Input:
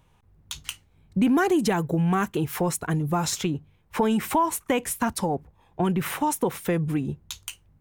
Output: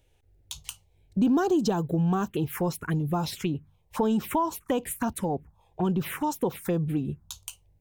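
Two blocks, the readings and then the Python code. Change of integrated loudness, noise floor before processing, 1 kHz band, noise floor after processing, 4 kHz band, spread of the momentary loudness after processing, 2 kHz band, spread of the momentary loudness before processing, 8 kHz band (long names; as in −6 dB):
−2.5 dB, −62 dBFS, −4.5 dB, −65 dBFS, −5.0 dB, 15 LU, −7.5 dB, 14 LU, −7.0 dB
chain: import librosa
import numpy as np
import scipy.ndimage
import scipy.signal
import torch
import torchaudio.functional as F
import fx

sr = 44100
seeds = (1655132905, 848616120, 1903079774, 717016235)

y = fx.env_phaser(x, sr, low_hz=180.0, high_hz=2100.0, full_db=-20.5)
y = y * librosa.db_to_amplitude(-1.5)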